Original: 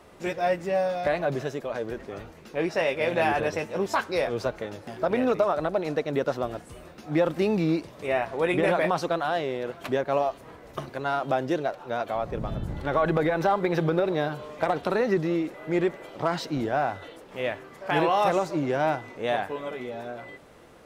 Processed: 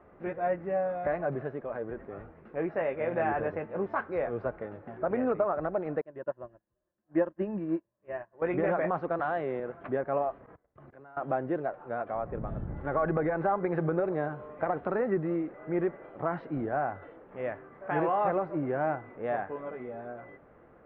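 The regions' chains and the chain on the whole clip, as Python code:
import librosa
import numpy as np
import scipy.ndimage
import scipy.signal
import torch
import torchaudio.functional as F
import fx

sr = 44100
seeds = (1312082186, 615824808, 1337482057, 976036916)

y = fx.chain(x, sr, fx.ripple_eq(per_octave=1.3, db=9),
    fx.upward_expand(threshold_db=-41.0, expansion=2.5), at=(6.01, 8.42))
y = fx.chain(y, sr, fx.high_shelf(hz=3300.0, db=8.5),
    fx.band_squash(depth_pct=70), at=(9.19, 9.6))
y = fx.chain(y, sr, fx.level_steps(step_db=23),
    fx.band_widen(depth_pct=100), at=(10.46, 11.17))
y = scipy.signal.sosfilt(scipy.signal.butter(4, 1800.0, 'lowpass', fs=sr, output='sos'), y)
y = fx.notch(y, sr, hz=950.0, q=17.0)
y = y * librosa.db_to_amplitude(-4.5)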